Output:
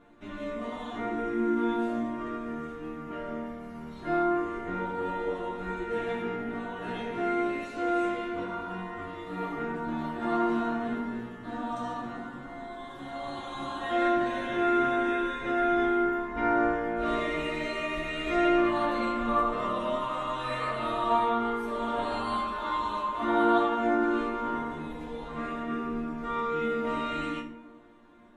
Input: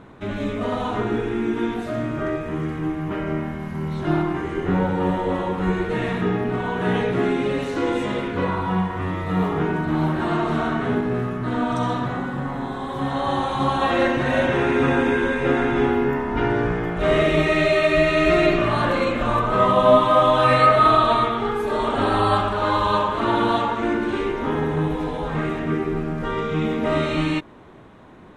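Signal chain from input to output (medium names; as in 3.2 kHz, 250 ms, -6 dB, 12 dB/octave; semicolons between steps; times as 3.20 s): chord resonator A#3 major, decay 0.29 s; reverberation RT60 1.5 s, pre-delay 58 ms, DRR 10.5 dB; trim +6.5 dB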